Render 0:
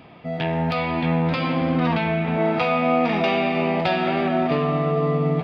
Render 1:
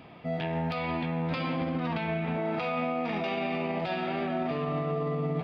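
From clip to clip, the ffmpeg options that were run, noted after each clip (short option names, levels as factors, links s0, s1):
-af "alimiter=limit=0.112:level=0:latency=1:release=73,volume=0.668"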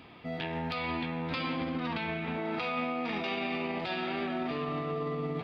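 -af "equalizer=f=160:t=o:w=0.67:g=-7,equalizer=f=630:t=o:w=0.67:g=-7,equalizer=f=4000:t=o:w=0.67:g=4"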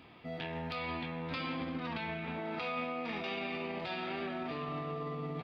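-filter_complex "[0:a]asplit=2[s0][s1];[s1]adelay=26,volume=0.282[s2];[s0][s2]amix=inputs=2:normalize=0,volume=0.596"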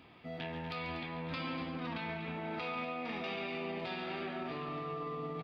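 -af "aecho=1:1:139.9|242:0.316|0.282,volume=0.794"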